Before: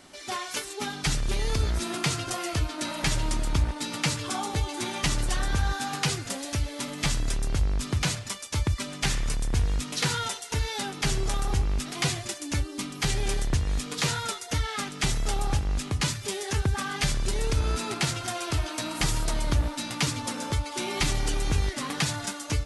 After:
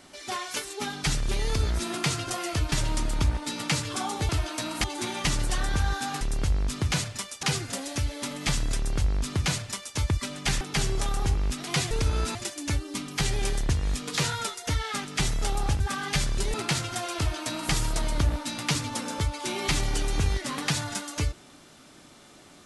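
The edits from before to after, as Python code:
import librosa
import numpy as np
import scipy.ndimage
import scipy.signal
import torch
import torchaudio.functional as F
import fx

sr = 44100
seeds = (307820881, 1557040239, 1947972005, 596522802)

y = fx.edit(x, sr, fx.cut(start_s=2.72, length_s=0.34),
    fx.duplicate(start_s=7.32, length_s=1.22, to_s=6.0),
    fx.cut(start_s=9.18, length_s=1.71),
    fx.cut(start_s=15.64, length_s=1.04),
    fx.move(start_s=17.42, length_s=0.44, to_s=12.19),
    fx.duplicate(start_s=18.49, length_s=0.55, to_s=4.63), tone=tone)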